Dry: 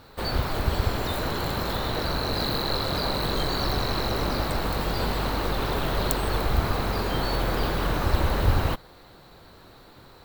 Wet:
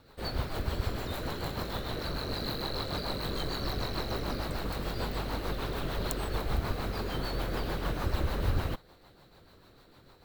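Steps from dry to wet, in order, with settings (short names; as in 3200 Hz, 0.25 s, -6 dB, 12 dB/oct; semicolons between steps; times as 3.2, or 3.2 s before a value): rotary speaker horn 6.7 Hz; gain -5.5 dB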